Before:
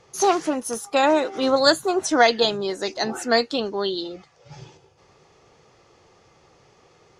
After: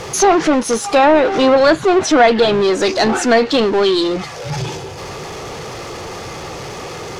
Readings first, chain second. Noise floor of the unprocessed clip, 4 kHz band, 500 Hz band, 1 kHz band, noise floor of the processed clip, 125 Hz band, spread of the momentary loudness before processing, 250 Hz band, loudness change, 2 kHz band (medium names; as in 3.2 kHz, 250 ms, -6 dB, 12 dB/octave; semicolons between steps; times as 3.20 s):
-57 dBFS, +4.0 dB, +9.0 dB, +7.5 dB, -29 dBFS, +16.0 dB, 9 LU, +10.0 dB, +7.5 dB, +7.0 dB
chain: power-law waveshaper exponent 0.5; low-pass that closes with the level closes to 2.4 kHz, closed at -8.5 dBFS; trim +1.5 dB